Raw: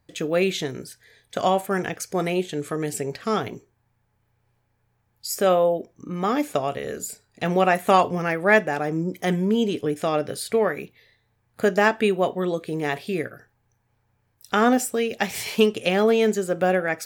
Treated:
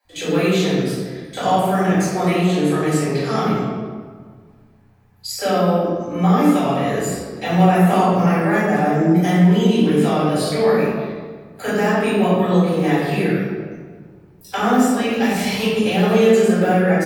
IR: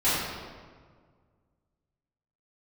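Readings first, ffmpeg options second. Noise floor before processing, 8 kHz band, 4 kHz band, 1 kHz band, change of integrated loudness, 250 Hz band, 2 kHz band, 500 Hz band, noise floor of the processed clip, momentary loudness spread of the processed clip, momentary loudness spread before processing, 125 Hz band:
-70 dBFS, +2.5 dB, +4.5 dB, +4.5 dB, +5.5 dB, +9.5 dB, +2.0 dB, +4.0 dB, -48 dBFS, 12 LU, 11 LU, +12.5 dB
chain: -filter_complex "[0:a]acrossover=split=120|370|770|6900[a][b][c][d][e];[a]acompressor=threshold=-53dB:ratio=4[f];[b]acompressor=threshold=-26dB:ratio=4[g];[c]acompressor=threshold=-32dB:ratio=4[h];[d]acompressor=threshold=-34dB:ratio=4[i];[e]acompressor=threshold=-42dB:ratio=4[j];[f][g][h][i][j]amix=inputs=5:normalize=0,acrossover=split=420[k][l];[k]adelay=40[m];[m][l]amix=inputs=2:normalize=0[n];[1:a]atrim=start_sample=2205[o];[n][o]afir=irnorm=-1:irlink=0,volume=-3.5dB"

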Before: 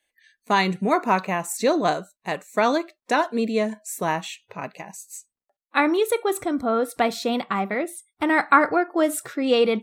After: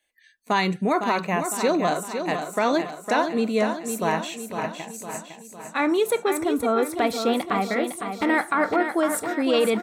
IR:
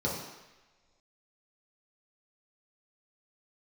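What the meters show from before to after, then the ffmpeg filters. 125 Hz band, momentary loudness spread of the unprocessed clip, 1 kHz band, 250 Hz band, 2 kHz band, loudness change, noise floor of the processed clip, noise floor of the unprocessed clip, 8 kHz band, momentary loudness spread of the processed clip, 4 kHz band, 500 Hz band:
+0.5 dB, 15 LU, -1.5 dB, 0.0 dB, -1.5 dB, -1.0 dB, -51 dBFS, under -85 dBFS, +1.0 dB, 9 LU, -0.5 dB, -0.5 dB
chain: -af "alimiter=limit=-12.5dB:level=0:latency=1:release=32,aecho=1:1:507|1014|1521|2028|2535|3042:0.422|0.219|0.114|0.0593|0.0308|0.016"

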